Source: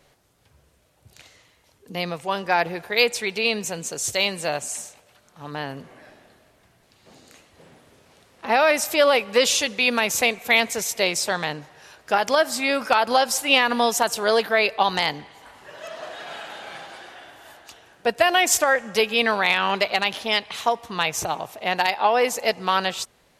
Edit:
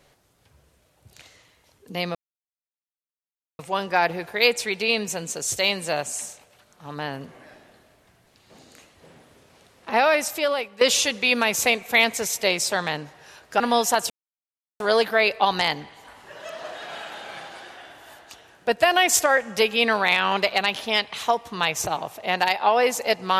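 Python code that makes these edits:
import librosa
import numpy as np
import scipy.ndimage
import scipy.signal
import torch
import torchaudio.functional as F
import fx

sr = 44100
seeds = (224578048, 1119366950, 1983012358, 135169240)

y = fx.edit(x, sr, fx.insert_silence(at_s=2.15, length_s=1.44),
    fx.fade_out_to(start_s=8.52, length_s=0.85, floor_db=-15.0),
    fx.cut(start_s=12.16, length_s=1.52),
    fx.insert_silence(at_s=14.18, length_s=0.7), tone=tone)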